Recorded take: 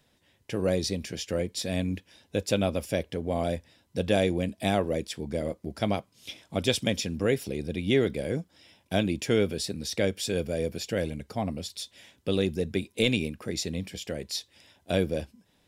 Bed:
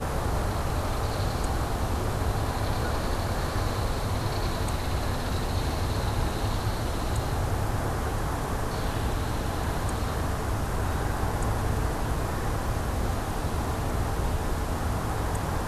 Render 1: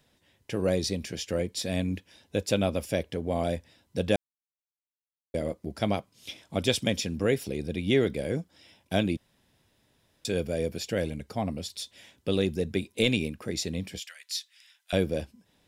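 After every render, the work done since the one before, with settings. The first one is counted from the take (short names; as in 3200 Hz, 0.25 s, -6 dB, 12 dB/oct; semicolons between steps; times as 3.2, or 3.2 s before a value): 4.16–5.34 mute; 9.17–10.25 room tone; 14–14.93 HPF 1400 Hz 24 dB/oct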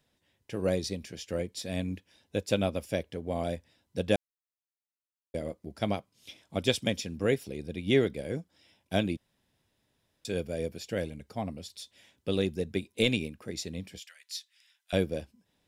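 upward expander 1.5:1, over -34 dBFS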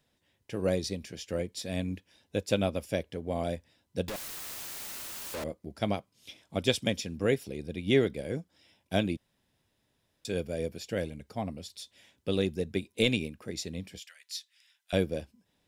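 4.08–5.44 infinite clipping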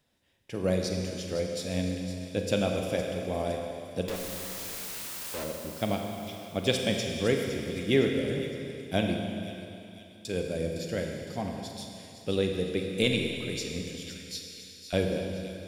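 thin delay 0.511 s, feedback 47%, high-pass 3500 Hz, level -10 dB; Schroeder reverb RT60 2.9 s, combs from 33 ms, DRR 2 dB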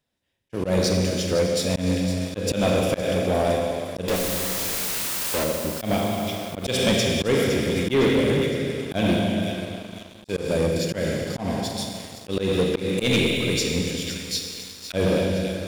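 auto swell 0.146 s; sample leveller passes 3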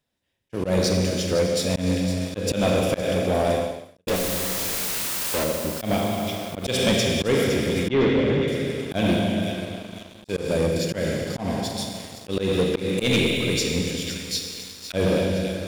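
3.61–4.07 fade out quadratic; 7.88–8.48 air absorption 160 m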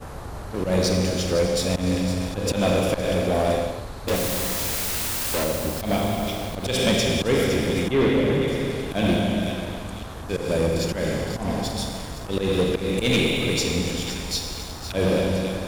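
add bed -7.5 dB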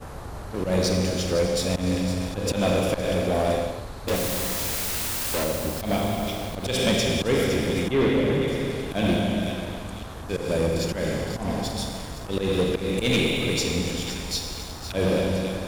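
gain -1.5 dB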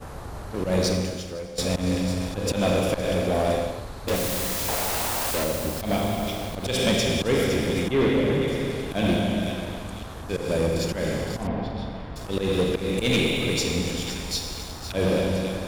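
0.89–1.58 fade out quadratic, to -14 dB; 4.68–5.31 bell 760 Hz +11.5 dB 1.4 oct; 11.47–12.16 air absorption 370 m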